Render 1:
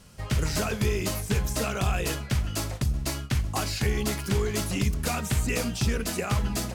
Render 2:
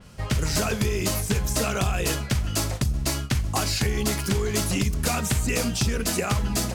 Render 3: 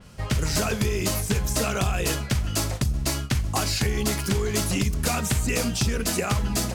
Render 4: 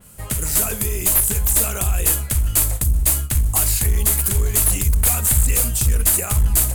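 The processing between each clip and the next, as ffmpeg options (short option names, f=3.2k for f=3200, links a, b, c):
-af "highshelf=f=6k:g=-6.5,acompressor=threshold=-25dB:ratio=6,adynamicequalizer=threshold=0.00282:dfrequency=4400:dqfactor=0.7:tfrequency=4400:tqfactor=0.7:attack=5:release=100:ratio=0.375:range=3.5:mode=boostabove:tftype=highshelf,volume=5dB"
-af anull
-af "asubboost=boost=10:cutoff=64,aexciter=amount=12.9:drive=2.1:freq=7.7k,aeval=exprs='clip(val(0),-1,0.251)':c=same,volume=-2dB"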